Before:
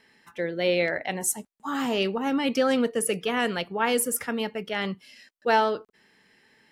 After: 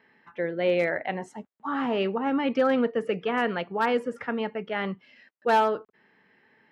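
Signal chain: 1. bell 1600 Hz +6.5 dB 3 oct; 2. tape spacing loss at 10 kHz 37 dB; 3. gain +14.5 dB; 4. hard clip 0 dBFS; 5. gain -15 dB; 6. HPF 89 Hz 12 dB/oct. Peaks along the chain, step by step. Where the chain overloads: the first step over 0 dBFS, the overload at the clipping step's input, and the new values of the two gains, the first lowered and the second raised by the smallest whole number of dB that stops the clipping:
-5.0, -9.0, +5.5, 0.0, -15.0, -13.0 dBFS; step 3, 5.5 dB; step 3 +8.5 dB, step 5 -9 dB

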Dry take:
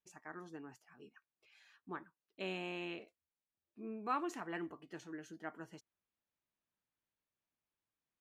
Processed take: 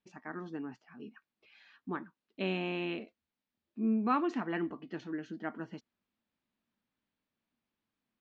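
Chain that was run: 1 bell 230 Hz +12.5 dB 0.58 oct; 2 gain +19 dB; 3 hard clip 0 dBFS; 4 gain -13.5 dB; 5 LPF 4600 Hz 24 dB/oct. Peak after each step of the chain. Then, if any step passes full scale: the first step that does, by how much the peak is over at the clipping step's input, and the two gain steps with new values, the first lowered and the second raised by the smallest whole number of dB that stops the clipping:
-25.0, -6.0, -6.0, -19.5, -19.5 dBFS; no overload

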